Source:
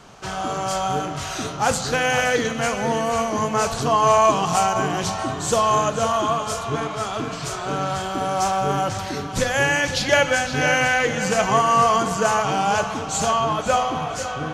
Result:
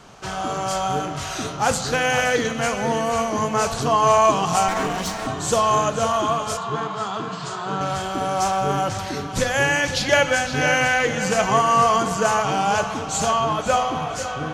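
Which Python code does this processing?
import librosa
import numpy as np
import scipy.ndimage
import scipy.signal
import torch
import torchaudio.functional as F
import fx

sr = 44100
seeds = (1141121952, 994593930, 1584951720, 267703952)

y = fx.lower_of_two(x, sr, delay_ms=4.3, at=(4.68, 5.27))
y = fx.cabinet(y, sr, low_hz=160.0, low_slope=12, high_hz=7200.0, hz=(190.0, 270.0, 580.0, 1000.0, 2300.0, 5800.0), db=(8, -10, -6, 5, -8, -8), at=(6.57, 7.81))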